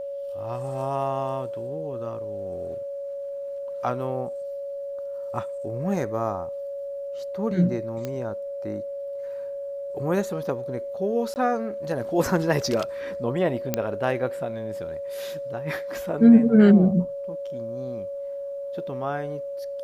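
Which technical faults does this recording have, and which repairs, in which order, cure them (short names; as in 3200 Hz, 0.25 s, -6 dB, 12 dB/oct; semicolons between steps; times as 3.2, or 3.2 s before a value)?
tone 560 Hz -30 dBFS
8.05 pop -17 dBFS
11.34–11.36 gap 19 ms
13.74 pop -8 dBFS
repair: de-click; notch 560 Hz, Q 30; interpolate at 11.34, 19 ms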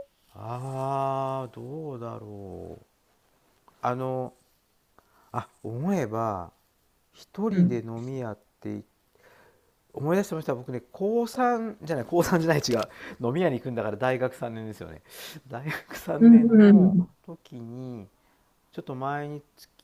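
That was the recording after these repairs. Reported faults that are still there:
none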